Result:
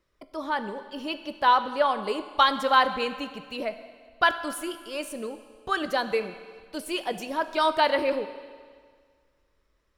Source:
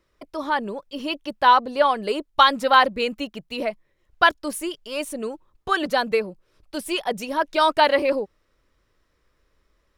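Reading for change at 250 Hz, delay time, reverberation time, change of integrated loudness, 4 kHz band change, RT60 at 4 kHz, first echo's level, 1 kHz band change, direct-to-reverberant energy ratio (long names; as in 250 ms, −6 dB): −4.5 dB, no echo audible, 1.8 s, −4.5 dB, −4.5 dB, 1.7 s, no echo audible, −4.5 dB, 10.0 dB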